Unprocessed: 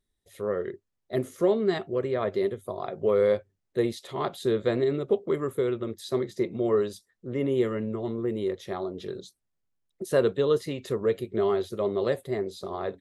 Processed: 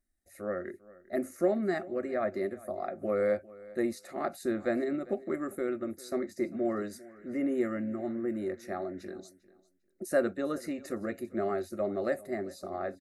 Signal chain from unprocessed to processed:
phaser with its sweep stopped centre 660 Hz, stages 8
0:06.55–0:09.10: noise in a band 1,400–2,100 Hz −66 dBFS
repeating echo 398 ms, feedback 18%, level −20.5 dB

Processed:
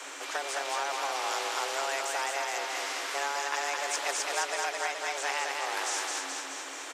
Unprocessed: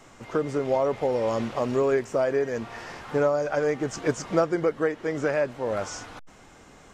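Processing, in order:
low-shelf EQ 480 Hz −12 dB
repeating echo 212 ms, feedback 47%, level −5.5 dB
frequency shifter +270 Hz
every bin compressed towards the loudest bin 2 to 1
level −2.5 dB

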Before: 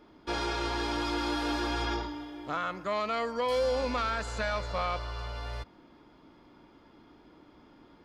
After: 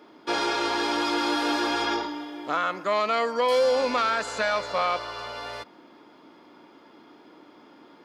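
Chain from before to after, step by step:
high-pass filter 270 Hz 12 dB per octave
level +7 dB

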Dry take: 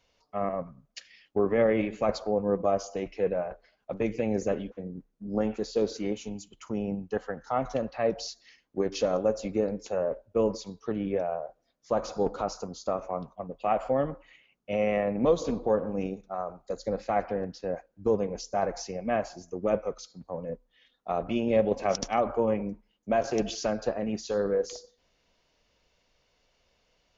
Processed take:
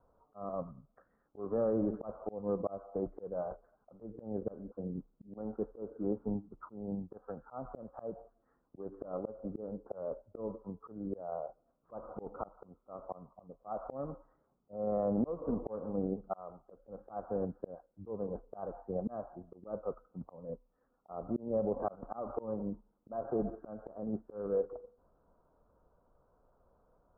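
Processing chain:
Butterworth low-pass 1,400 Hz 72 dB per octave
volume swells 629 ms
brickwall limiter −26 dBFS, peak gain reduction 8 dB
level +3 dB

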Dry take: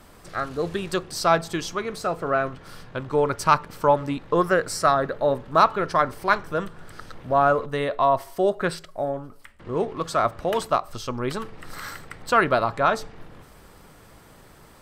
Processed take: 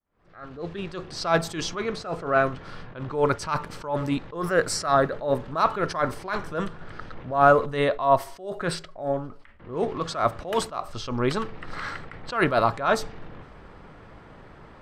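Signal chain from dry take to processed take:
fade in at the beginning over 1.39 s
low-pass that shuts in the quiet parts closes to 2,300 Hz, open at −18.5 dBFS
level that may rise only so fast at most 130 dB per second
level +3.5 dB

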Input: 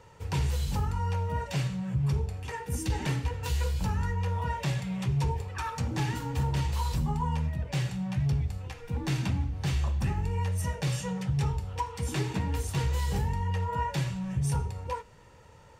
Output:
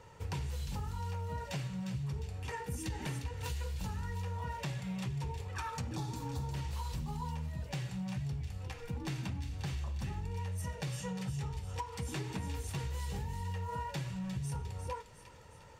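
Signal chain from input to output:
healed spectral selection 0:05.94–0:06.43, 1,200–3,300 Hz
downward compressor, threshold −34 dBFS, peak gain reduction 10 dB
on a send: delay with a high-pass on its return 354 ms, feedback 50%, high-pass 2,400 Hz, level −7 dB
on the sum: level −1.5 dB

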